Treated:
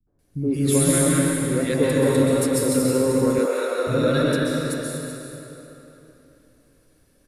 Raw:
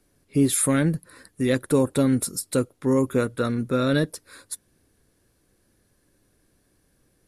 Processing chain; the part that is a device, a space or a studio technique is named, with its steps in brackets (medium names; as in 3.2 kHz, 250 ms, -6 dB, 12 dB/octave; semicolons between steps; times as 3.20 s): cave (delay 385 ms -12.5 dB; reverberation RT60 3.4 s, pre-delay 120 ms, DRR -5.5 dB); 3.38–3.87 s: high-pass 400 Hz 24 dB/octave; three bands offset in time lows, mids, highs 70/190 ms, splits 210/1200 Hz; trim -1.5 dB